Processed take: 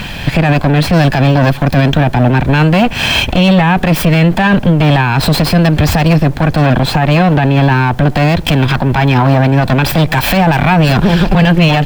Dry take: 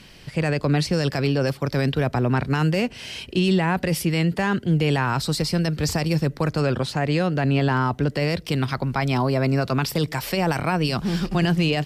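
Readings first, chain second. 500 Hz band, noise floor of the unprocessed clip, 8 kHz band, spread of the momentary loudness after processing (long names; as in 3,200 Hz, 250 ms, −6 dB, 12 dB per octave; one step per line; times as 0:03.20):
+10.0 dB, −44 dBFS, +8.0 dB, 2 LU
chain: lower of the sound and its delayed copy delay 1.2 ms
flat-topped bell 7,600 Hz −11 dB
downward compressor, threshold −29 dBFS, peak gain reduction 11.5 dB
background noise pink −70 dBFS
boost into a limiter +27.5 dB
level −1 dB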